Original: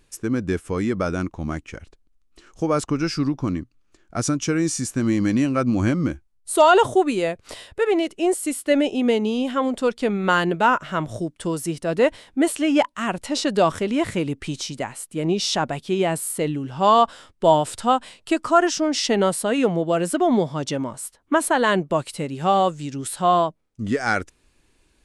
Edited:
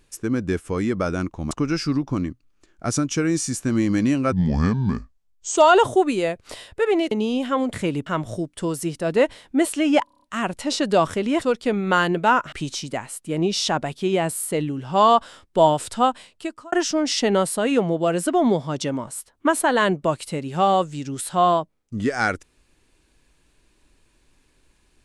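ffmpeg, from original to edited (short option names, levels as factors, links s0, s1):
-filter_complex "[0:a]asplit=16[s0][s1][s2][s3][s4][s5][s6][s7][s8][s9][s10][s11][s12][s13][s14][s15];[s0]atrim=end=1.512[s16];[s1]atrim=start=2.818:end=5.634[s17];[s2]atrim=start=5.63:end=6.57,asetpts=PTS-STARTPTS,asetrate=33075,aresample=44100[s18];[s3]atrim=start=6.566:end=8.112[s19];[s4]atrim=start=9.158:end=9.782[s20];[s5]atrim=start=14.058:end=14.392[s21];[s6]atrim=start=10.888:end=12.902[s22];[s7]atrim=start=12.868:end=12.902[s23];[s8]atrim=start=12.868:end=12.902[s24];[s9]atrim=start=12.868:end=12.902[s25];[s10]atrim=start=12.868:end=12.902[s26];[s11]atrim=start=12.868:end=12.902[s27];[s12]atrim=start=12.868:end=14.062[s28];[s13]atrim=start=9.778:end=10.892[s29];[s14]atrim=start=14.388:end=18.59,asetpts=PTS-STARTPTS,afade=t=out:st=3.522:d=0.68[s30];[s15]atrim=start=18.59,asetpts=PTS-STARTPTS,afade=t=in:d=0.004:c=hsin[s31];[s16][s17]acrossfade=d=0.004:c1=hsin:c2=hsin[s32];[s32][s18]acrossfade=d=0.004:c1=hsin:c2=hsin[s33];[s33][s19]acrossfade=d=0.004:c1=hsin:c2=hsin[s34];[s34][s20]acrossfade=d=0.004:c1=hsin:c2=hsin[s35];[s35][s21]acrossfade=d=0.004:c1=hsin:c2=hsin[s36];[s36][s22]acrossfade=d=0.004:c1=hsin:c2=hsin[s37];[s37][s23]acrossfade=d=0.004:c1=hsin:c2=hsin[s38];[s38][s24]acrossfade=d=0.004:c1=hsin:c2=hsin[s39];[s39][s25]acrossfade=d=0.004:c1=hsin:c2=hsin[s40];[s40][s26]acrossfade=d=0.004:c1=hsin:c2=hsin[s41];[s41][s27]acrossfade=d=0.004:c1=hsin:c2=hsin[s42];[s42][s28]acrossfade=d=0.004:c1=hsin:c2=hsin[s43];[s43][s29]acrossfade=d=0.004:c1=hsin:c2=hsin[s44];[s30][s31]concat=n=2:v=0:a=1[s45];[s44][s45]acrossfade=d=0.004:c1=hsin:c2=hsin"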